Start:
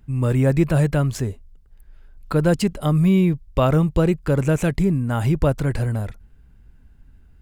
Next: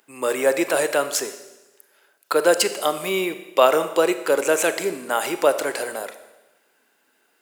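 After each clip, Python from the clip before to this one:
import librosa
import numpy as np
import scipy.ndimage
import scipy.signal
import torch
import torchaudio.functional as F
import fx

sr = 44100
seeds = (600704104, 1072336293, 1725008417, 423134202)

y = scipy.signal.sosfilt(scipy.signal.butter(4, 410.0, 'highpass', fs=sr, output='sos'), x)
y = fx.high_shelf(y, sr, hz=3900.0, db=8.0)
y = fx.rev_schroeder(y, sr, rt60_s=1.1, comb_ms=28, drr_db=10.5)
y = F.gain(torch.from_numpy(y), 5.0).numpy()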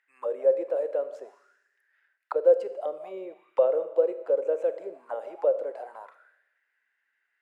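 y = fx.auto_wah(x, sr, base_hz=520.0, top_hz=1900.0, q=7.9, full_db=-19.5, direction='down')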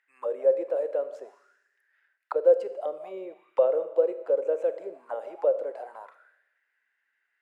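y = x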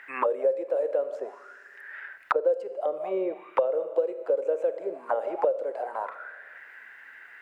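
y = fx.band_squash(x, sr, depth_pct=100)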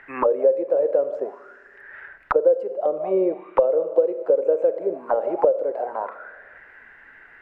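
y = fx.tilt_eq(x, sr, slope=-4.0)
y = F.gain(torch.from_numpy(y), 3.0).numpy()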